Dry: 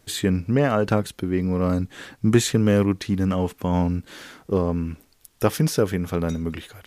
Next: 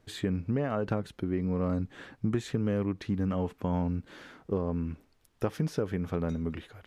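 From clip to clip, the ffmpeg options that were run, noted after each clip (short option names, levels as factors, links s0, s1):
-af "acompressor=threshold=0.1:ratio=6,lowpass=f=1900:p=1,volume=0.562"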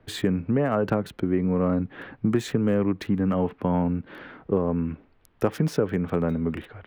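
-filter_complex "[0:a]acrossover=split=120|410|3200[s0][s1][s2][s3];[s0]acompressor=threshold=0.00398:ratio=6[s4];[s3]aeval=exprs='val(0)*gte(abs(val(0)),0.00282)':c=same[s5];[s4][s1][s2][s5]amix=inputs=4:normalize=0,volume=2.37"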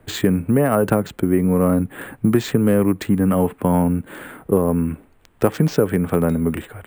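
-af "acrusher=samples=4:mix=1:aa=0.000001,volume=2.11"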